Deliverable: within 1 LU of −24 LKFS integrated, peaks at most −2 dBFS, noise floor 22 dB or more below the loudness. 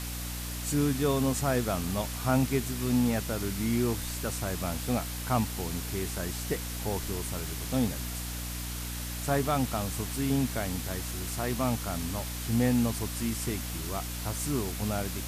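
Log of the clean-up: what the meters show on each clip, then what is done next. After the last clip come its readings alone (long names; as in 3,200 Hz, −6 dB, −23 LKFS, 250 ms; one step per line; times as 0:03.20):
mains hum 60 Hz; hum harmonics up to 300 Hz; level of the hum −35 dBFS; background noise floor −36 dBFS; target noise floor −53 dBFS; integrated loudness −30.5 LKFS; sample peak −13.0 dBFS; target loudness −24.0 LKFS
→ hum removal 60 Hz, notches 5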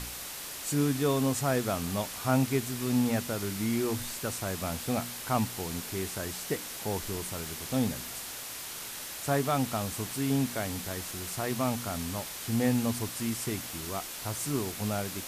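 mains hum none found; background noise floor −41 dBFS; target noise floor −54 dBFS
→ noise reduction from a noise print 13 dB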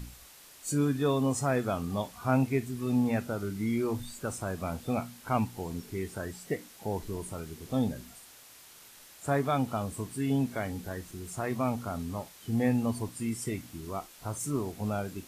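background noise floor −53 dBFS; target noise floor −55 dBFS
→ noise reduction from a noise print 6 dB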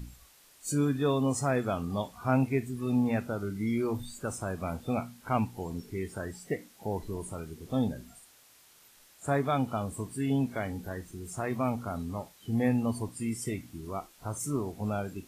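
background noise floor −59 dBFS; integrated loudness −32.5 LKFS; sample peak −14.5 dBFS; target loudness −24.0 LKFS
→ level +8.5 dB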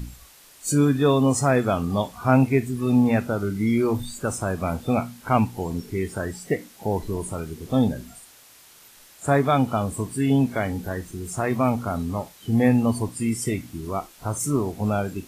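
integrated loudness −24.0 LKFS; sample peak −6.0 dBFS; background noise floor −51 dBFS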